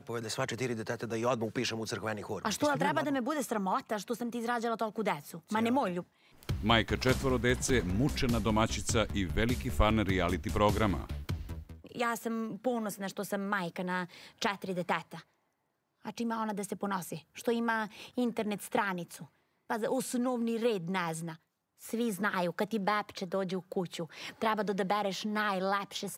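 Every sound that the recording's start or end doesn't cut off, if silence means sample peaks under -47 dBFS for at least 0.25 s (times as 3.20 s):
6.43–15.21 s
16.05–19.26 s
19.70–21.35 s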